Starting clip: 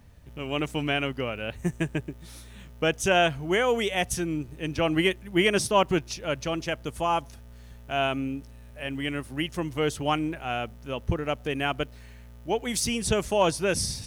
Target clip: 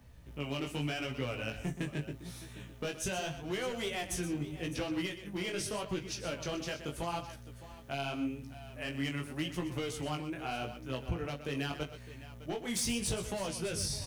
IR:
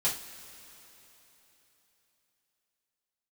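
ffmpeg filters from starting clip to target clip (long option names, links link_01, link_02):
-filter_complex "[0:a]alimiter=limit=-18.5dB:level=0:latency=1:release=330,volume=25dB,asoftclip=hard,volume=-25dB,acrossover=split=190|3000[link_01][link_02][link_03];[link_02]acompressor=threshold=-32dB:ratio=6[link_04];[link_01][link_04][link_03]amix=inputs=3:normalize=0,aecho=1:1:41|124|609:0.168|0.266|0.168,flanger=delay=15.5:depth=6.5:speed=0.82"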